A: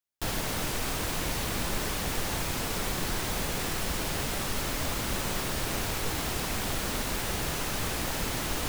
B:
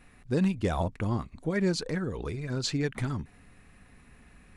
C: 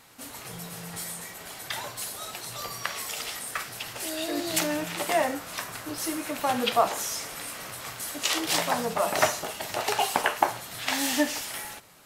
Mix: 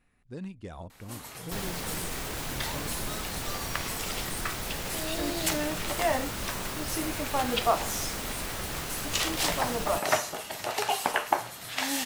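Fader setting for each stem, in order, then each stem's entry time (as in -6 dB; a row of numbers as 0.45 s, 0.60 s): -4.5 dB, -13.5 dB, -2.5 dB; 1.30 s, 0.00 s, 0.90 s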